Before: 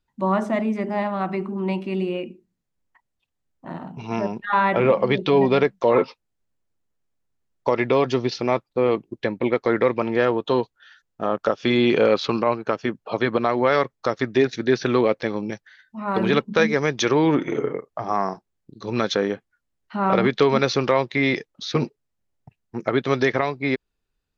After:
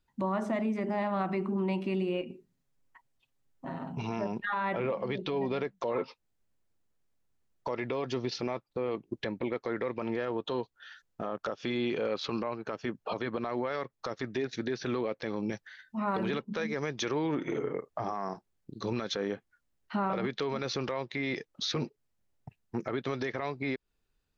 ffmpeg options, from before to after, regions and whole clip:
ffmpeg -i in.wav -filter_complex "[0:a]asettb=1/sr,asplit=3[link_01][link_02][link_03];[link_01]atrim=end=2.214[link_04];[link_02]atrim=start=2.21:end=3.94,asetpts=PTS-STARTPTS,afade=type=in:duration=0.004:curve=qsin,afade=type=out:start_time=1.726:duration=0.004:curve=qsin,acompressor=threshold=-36dB:ratio=4:attack=3.2:release=140:knee=1:detection=peak,aecho=1:1:7.4:0.62,atrim=end_sample=76293[link_05];[link_03]atrim=start=3.936[link_06];[link_04][link_05]acrossfade=duration=0.004:curve1=hsin:curve2=qsin[link_07];[link_07][link_06]acrossfade=duration=0.004:curve1=qsin:curve2=hsin,acompressor=threshold=-27dB:ratio=6,alimiter=limit=-23dB:level=0:latency=1:release=10" out.wav

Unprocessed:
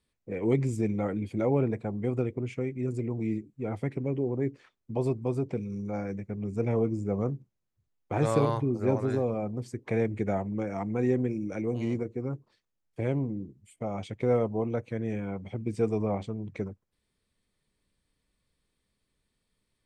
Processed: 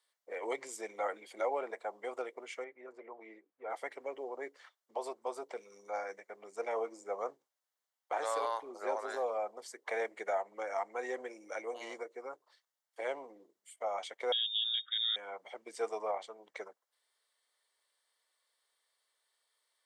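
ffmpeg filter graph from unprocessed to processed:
ffmpeg -i in.wav -filter_complex "[0:a]asettb=1/sr,asplit=3[link_01][link_02][link_03];[link_01]atrim=end=2.644[link_04];[link_02]atrim=start=2.64:end=3.7,asetpts=PTS-STARTPTS,afade=type=in:duration=0.004:curve=qsin,afade=type=out:start_time=1.056:duration=0.004:curve=qsin,lowpass=1700,lowshelf=frequency=460:gain=-5.5[link_05];[link_03]atrim=start=3.696[link_06];[link_04][link_05]acrossfade=duration=0.004:curve1=hsin:curve2=qsin[link_07];[link_07][link_06]acrossfade=duration=0.004:curve1=qsin:curve2=hsin,asettb=1/sr,asplit=3[link_08][link_09][link_10];[link_08]atrim=end=14.324[link_11];[link_09]atrim=start=14.32:end=15.16,asetpts=PTS-STARTPTS,afade=type=in:duration=0.004:curve=qsin,afade=type=out:start_time=0.836:duration=0.004:curve=qsin,lowpass=frequency=3200:width_type=q:width=0.5098,lowpass=frequency=3200:width_type=q:width=0.6013,lowpass=frequency=3200:width_type=q:width=0.9,lowpass=frequency=3200:width_type=q:width=2.563,afreqshift=-3800,asuperstop=centerf=730:order=20:qfactor=1[link_12];[link_10]atrim=start=15.156[link_13];[link_11][link_12]acrossfade=duration=0.004:curve1=hsin:curve2=qsin[link_14];[link_14][link_13]acrossfade=duration=0.004:curve1=qsin:curve2=hsin,highpass=frequency=620:width=0.5412,highpass=frequency=620:width=1.3066,bandreject=frequency=2500:width=5.2,alimiter=level_in=3dB:limit=-24dB:level=0:latency=1:release=363,volume=-3dB,volume=3dB" out.wav

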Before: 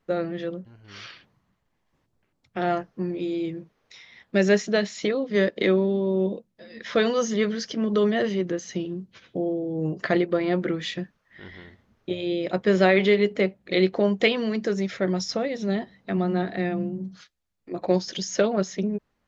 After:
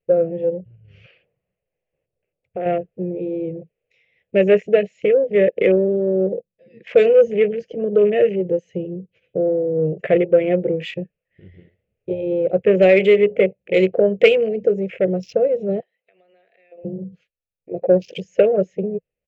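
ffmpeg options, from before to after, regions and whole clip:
ffmpeg -i in.wav -filter_complex "[0:a]asettb=1/sr,asplit=3[link_01][link_02][link_03];[link_01]atrim=end=1.044[link_04];[link_02]atrim=start=1.04:end=2.66,asetpts=PTS-STARTPTS,afade=type=in:duration=0.004:curve=qsin,afade=type=out:start_time=1.616:duration=0.004:curve=qsin,equalizer=frequency=820:width_type=o:width=2.7:gain=8.5,acompressor=threshold=-31dB:ratio=2.5:attack=3.2:release=140:knee=1:detection=peak[link_05];[link_03]atrim=start=2.656[link_06];[link_04][link_05]acrossfade=duration=0.004:curve1=hsin:curve2=qsin[link_07];[link_07][link_06]acrossfade=duration=0.004:curve1=qsin:curve2=hsin,asettb=1/sr,asplit=3[link_08][link_09][link_10];[link_08]atrim=end=15.804[link_11];[link_09]atrim=start=15.8:end=16.85,asetpts=PTS-STARTPTS,afade=type=in:duration=0.004:curve=qsin,afade=type=out:start_time=1.046:duration=0.004:curve=qsin,highpass=900,acompressor=threshold=-42dB:ratio=4:attack=3.2:release=140:knee=1:detection=peak[link_12];[link_10]atrim=start=16.846[link_13];[link_11][link_12]acrossfade=duration=0.004:curve1=hsin:curve2=qsin[link_14];[link_14][link_13]acrossfade=duration=0.004:curve1=qsin:curve2=hsin,afwtdn=0.02,firequalizer=gain_entry='entry(170,0);entry(240,-12);entry(490,10);entry(960,-19);entry(2600,6);entry(3700,-14);entry(5600,-17);entry(8800,-1)':delay=0.05:min_phase=1,acontrast=21" out.wav

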